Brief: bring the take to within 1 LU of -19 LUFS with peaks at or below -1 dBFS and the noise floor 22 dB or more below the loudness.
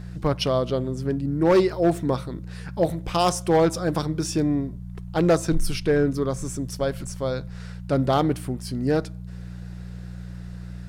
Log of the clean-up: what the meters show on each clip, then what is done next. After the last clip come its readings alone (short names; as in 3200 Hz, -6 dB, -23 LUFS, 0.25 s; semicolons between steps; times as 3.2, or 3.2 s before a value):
clipped 0.6%; flat tops at -12.5 dBFS; hum 60 Hz; harmonics up to 180 Hz; hum level -34 dBFS; loudness -24.0 LUFS; peak -12.5 dBFS; loudness target -19.0 LUFS
-> clip repair -12.5 dBFS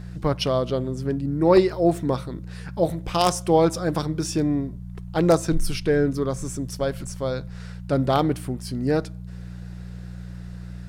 clipped 0.0%; hum 60 Hz; harmonics up to 180 Hz; hum level -33 dBFS
-> de-hum 60 Hz, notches 3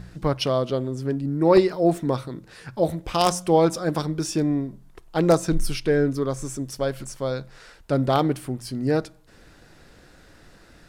hum none; loudness -23.5 LUFS; peak -3.5 dBFS; loudness target -19.0 LUFS
-> gain +4.5 dB; limiter -1 dBFS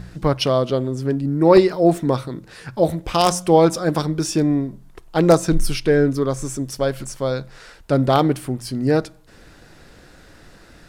loudness -19.0 LUFS; peak -1.0 dBFS; noise floor -47 dBFS